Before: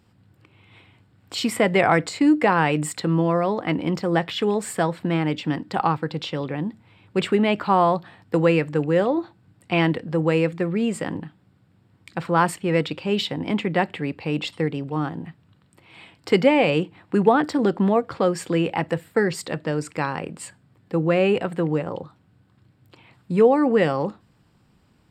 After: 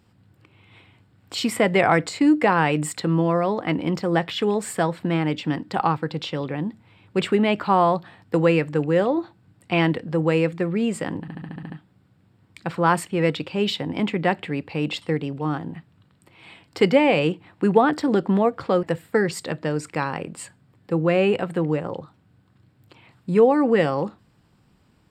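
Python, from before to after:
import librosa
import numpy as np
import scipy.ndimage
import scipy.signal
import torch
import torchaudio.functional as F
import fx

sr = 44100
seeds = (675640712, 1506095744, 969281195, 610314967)

y = fx.edit(x, sr, fx.stutter(start_s=11.21, slice_s=0.07, count=8),
    fx.cut(start_s=18.34, length_s=0.51), tone=tone)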